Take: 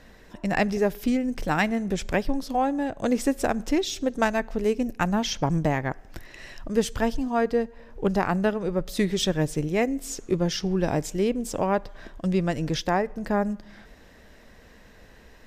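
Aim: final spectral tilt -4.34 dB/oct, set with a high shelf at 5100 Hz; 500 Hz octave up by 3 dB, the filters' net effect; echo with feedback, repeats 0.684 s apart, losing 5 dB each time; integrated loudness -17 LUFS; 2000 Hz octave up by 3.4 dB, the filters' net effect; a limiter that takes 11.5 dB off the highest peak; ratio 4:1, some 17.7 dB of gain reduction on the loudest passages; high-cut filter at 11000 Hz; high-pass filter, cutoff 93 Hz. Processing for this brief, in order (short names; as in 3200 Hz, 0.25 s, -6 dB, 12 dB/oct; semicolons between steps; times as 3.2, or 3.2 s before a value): HPF 93 Hz; LPF 11000 Hz; bell 500 Hz +3.5 dB; bell 2000 Hz +3 dB; high shelf 5100 Hz +7.5 dB; compressor 4:1, threshold -38 dBFS; limiter -31.5 dBFS; feedback echo 0.684 s, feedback 56%, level -5 dB; gain +23 dB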